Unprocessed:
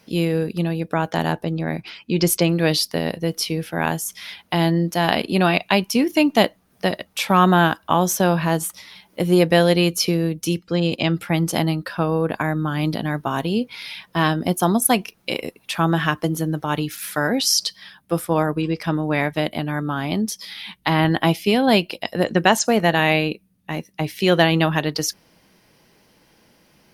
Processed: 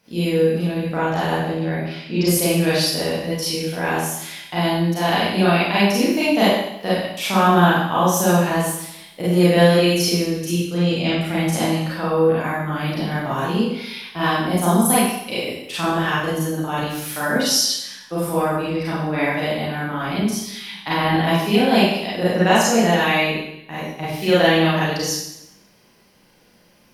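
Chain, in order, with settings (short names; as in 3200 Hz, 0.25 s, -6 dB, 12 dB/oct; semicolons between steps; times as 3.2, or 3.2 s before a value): Schroeder reverb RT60 0.82 s, combs from 31 ms, DRR -9.5 dB; gain -8.5 dB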